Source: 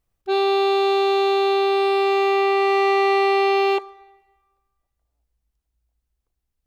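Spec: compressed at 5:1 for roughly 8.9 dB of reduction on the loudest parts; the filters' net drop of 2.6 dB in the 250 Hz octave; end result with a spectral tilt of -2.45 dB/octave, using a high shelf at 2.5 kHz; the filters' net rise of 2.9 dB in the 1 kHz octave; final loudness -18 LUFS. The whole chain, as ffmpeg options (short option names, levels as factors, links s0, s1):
-af "equalizer=f=250:t=o:g=-8.5,equalizer=f=1000:t=o:g=3.5,highshelf=f=2500:g=8,acompressor=threshold=0.0562:ratio=5,volume=2.66"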